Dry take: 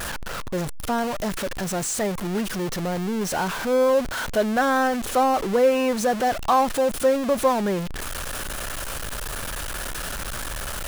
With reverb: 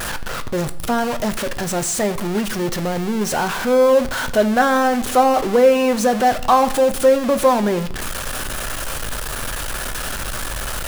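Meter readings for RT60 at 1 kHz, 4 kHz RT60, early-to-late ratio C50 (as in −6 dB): 0.65 s, 0.60 s, 16.5 dB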